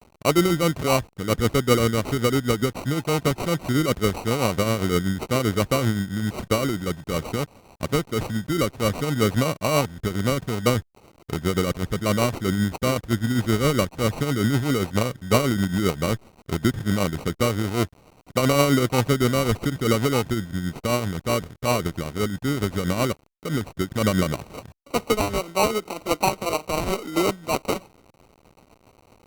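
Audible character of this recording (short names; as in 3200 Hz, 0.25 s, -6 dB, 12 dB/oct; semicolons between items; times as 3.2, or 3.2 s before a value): a quantiser's noise floor 8-bit, dither none; tremolo triangle 7.7 Hz, depth 55%; aliases and images of a low sample rate 1700 Hz, jitter 0%; Opus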